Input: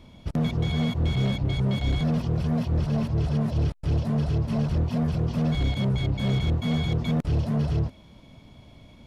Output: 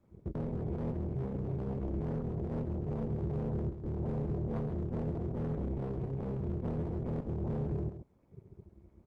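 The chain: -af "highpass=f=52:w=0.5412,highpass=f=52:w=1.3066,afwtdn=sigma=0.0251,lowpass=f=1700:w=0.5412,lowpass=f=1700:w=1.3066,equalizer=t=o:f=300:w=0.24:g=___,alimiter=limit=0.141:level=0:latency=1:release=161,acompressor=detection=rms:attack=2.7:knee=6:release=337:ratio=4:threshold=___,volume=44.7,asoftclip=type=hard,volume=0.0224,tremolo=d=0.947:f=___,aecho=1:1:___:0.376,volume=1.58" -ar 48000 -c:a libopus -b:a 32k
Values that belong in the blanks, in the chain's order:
3.5, 0.0447, 270, 134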